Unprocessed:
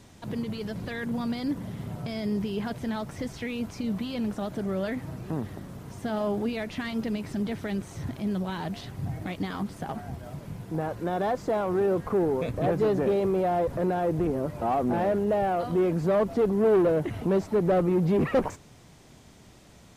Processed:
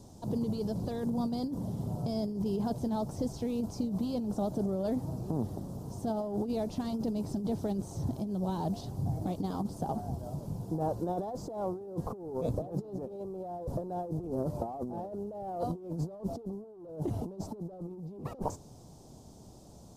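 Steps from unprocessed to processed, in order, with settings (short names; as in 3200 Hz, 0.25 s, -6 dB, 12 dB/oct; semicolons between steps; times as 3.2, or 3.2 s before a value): EQ curve 860 Hz 0 dB, 2000 Hz -25 dB, 5000 Hz -2 dB; negative-ratio compressor -30 dBFS, ratio -0.5; gain -3 dB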